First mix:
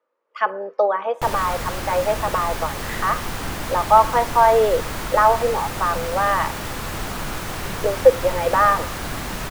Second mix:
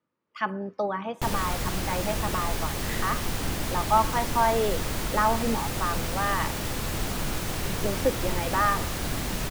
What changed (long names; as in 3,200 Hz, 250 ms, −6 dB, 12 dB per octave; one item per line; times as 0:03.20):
speech: remove high-pass with resonance 500 Hz, resonance Q 3.8
master: add parametric band 1,200 Hz −6.5 dB 1.9 octaves